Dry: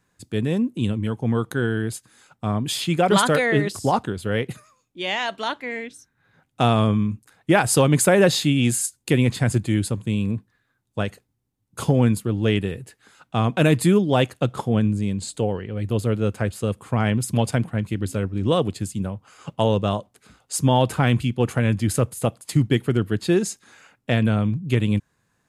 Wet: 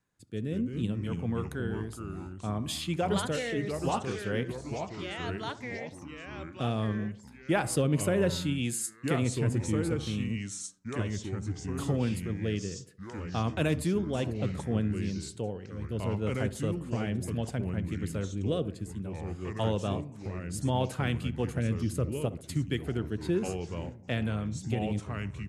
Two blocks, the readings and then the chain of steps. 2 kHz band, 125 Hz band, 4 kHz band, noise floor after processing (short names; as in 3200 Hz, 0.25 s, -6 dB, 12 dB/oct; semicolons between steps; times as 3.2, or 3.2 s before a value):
-11.0 dB, -9.0 dB, -11.0 dB, -49 dBFS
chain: rotary speaker horn 0.65 Hz; on a send: tape echo 65 ms, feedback 55%, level -14 dB, low-pass 1200 Hz; on the sum: echoes that change speed 0.129 s, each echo -3 st, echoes 3, each echo -6 dB; gain -9 dB